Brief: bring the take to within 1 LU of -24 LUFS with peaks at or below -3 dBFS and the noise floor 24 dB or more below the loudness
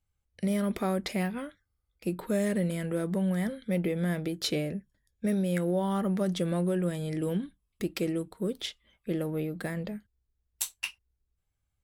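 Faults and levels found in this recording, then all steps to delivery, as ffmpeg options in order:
loudness -31.5 LUFS; peak -13.0 dBFS; loudness target -24.0 LUFS
-> -af "volume=7.5dB"

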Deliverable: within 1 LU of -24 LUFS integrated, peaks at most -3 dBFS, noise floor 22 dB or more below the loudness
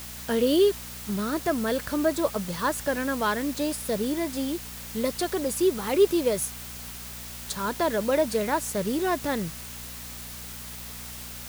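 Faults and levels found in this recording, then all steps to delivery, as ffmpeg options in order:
hum 60 Hz; harmonics up to 240 Hz; hum level -42 dBFS; noise floor -40 dBFS; noise floor target -50 dBFS; loudness -27.5 LUFS; peak -9.5 dBFS; loudness target -24.0 LUFS
-> -af "bandreject=f=60:t=h:w=4,bandreject=f=120:t=h:w=4,bandreject=f=180:t=h:w=4,bandreject=f=240:t=h:w=4"
-af "afftdn=nr=10:nf=-40"
-af "volume=3.5dB"

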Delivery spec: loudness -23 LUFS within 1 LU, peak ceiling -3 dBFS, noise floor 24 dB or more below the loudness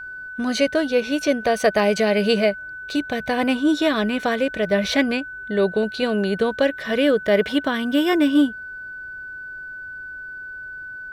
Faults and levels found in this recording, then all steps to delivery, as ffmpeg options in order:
steady tone 1500 Hz; tone level -32 dBFS; loudness -20.5 LUFS; peak -5.0 dBFS; loudness target -23.0 LUFS
-> -af "bandreject=f=1.5k:w=30"
-af "volume=-2.5dB"

